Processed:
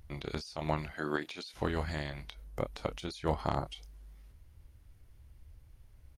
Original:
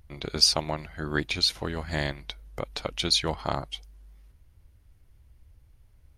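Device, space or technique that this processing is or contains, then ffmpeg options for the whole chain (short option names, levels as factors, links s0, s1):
de-esser from a sidechain: -filter_complex "[0:a]asettb=1/sr,asplit=3[s0][s1][s2];[s0]atrim=end=0.914[s3];[s1]atrim=start=0.91:end=1.54,asetpts=PTS-STARTPTS,afade=t=in:d=0.004:c=qsin,afade=t=out:st=0.626:d=0.004:c=qsin,highpass=270[s4];[s2]atrim=start=1.536[s5];[s3][s4]acrossfade=d=0.004:c1=hsin:c2=qsin[s6];[s6][s5]acrossfade=d=0.004:c1=qsin:c2=hsin,asettb=1/sr,asplit=3[s7][s8][s9];[s7]atrim=end=2.444[s10];[s8]atrim=start=2.44:end=3.66,asetpts=PTS-STARTPTS,afade=t=in:d=0.004:c=qsin,afade=t=out:st=1.216:d=0.004:c=qsin,equalizer=f=3300:w=0.53:g=-5.5[s11];[s9]atrim=start=3.656[s12];[s10][s11]acrossfade=d=0.004:c1=hsin:c2=qsin[s13];[s13][s12]acrossfade=d=0.004:c1=qsin:c2=hsin,asplit=2[s14][s15];[s15]adelay=27,volume=0.282[s16];[s14][s16]amix=inputs=2:normalize=0,asplit=2[s17][s18];[s18]highpass=4700,apad=whole_len=273334[s19];[s17][s19]sidechaincompress=threshold=0.00398:ratio=8:attack=2.7:release=76"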